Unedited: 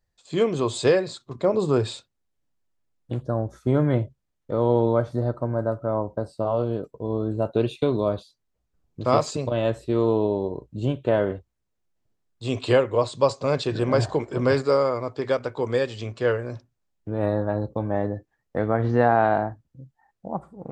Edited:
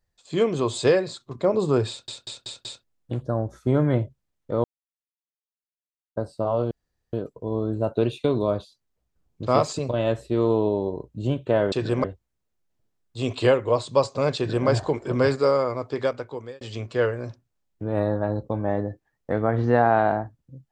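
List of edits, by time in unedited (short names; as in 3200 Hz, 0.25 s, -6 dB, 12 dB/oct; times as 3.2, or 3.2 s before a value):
1.89 stutter in place 0.19 s, 5 plays
4.64–6.16 mute
6.71 insert room tone 0.42 s
13.62–13.94 copy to 11.3
15.26–15.87 fade out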